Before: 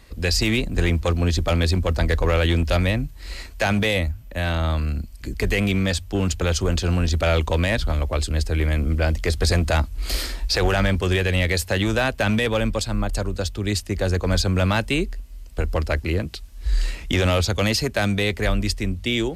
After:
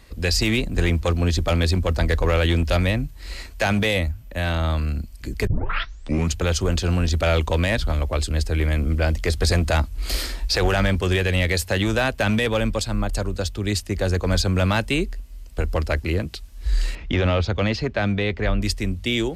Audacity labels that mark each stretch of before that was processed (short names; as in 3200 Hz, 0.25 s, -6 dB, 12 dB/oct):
5.470000	5.470000	tape start 0.87 s
16.950000	18.620000	air absorption 210 m